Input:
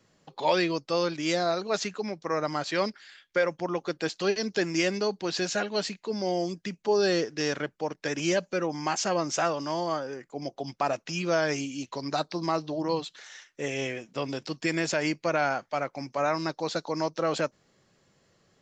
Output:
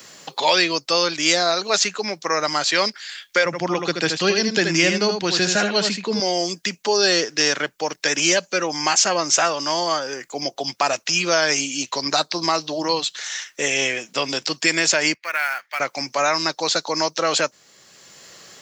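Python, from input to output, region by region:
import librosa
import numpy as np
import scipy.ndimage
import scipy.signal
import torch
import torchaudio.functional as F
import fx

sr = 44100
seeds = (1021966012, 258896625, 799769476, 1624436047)

y = fx.chain(x, sr, fx.bass_treble(bass_db=13, treble_db=-7),
    fx.echo_single(ms=78, db=-6.5), at=(3.45, 6.2))
y = fx.chain(y, sr, fx.bandpass_q(hz=1900.0, q=2.4),
    fx.quant_float(bits=4), at=(15.14, 15.8))
y = fx.tilt_eq(y, sr, slope=3.5)
y = fx.band_squash(y, sr, depth_pct=40)
y = F.gain(torch.from_numpy(y), 8.0).numpy()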